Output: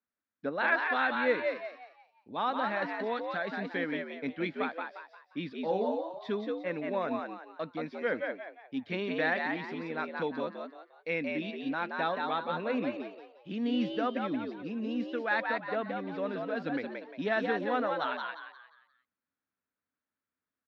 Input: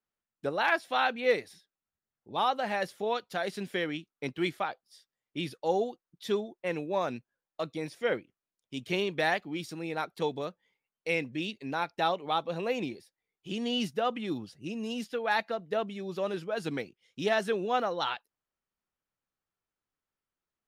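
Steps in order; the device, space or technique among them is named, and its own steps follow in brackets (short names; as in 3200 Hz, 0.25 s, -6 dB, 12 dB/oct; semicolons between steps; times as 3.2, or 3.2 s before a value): 5.61–6.25 doubler 32 ms -5 dB; frequency-shifting delay pedal into a guitar cabinet (frequency-shifting echo 0.176 s, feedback 36%, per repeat +80 Hz, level -4 dB; speaker cabinet 83–3700 Hz, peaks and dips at 130 Hz -8 dB, 260 Hz +8 dB, 370 Hz -5 dB, 800 Hz -4 dB, 1600 Hz +4 dB, 3000 Hz -8 dB); gain -2 dB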